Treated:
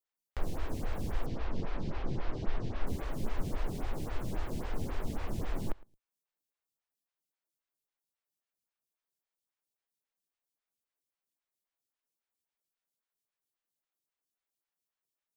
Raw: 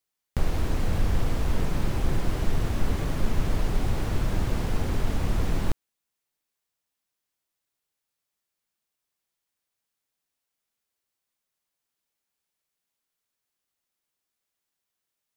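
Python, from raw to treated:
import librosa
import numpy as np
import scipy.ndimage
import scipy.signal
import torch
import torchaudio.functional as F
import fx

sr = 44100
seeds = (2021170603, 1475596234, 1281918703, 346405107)

y = fx.lowpass(x, sr, hz=5300.0, slope=24, at=(1.26, 2.87))
y = fx.echo_feedback(y, sr, ms=111, feedback_pct=18, wet_db=-23.0)
y = fx.stagger_phaser(y, sr, hz=3.7)
y = F.gain(torch.from_numpy(y), -5.5).numpy()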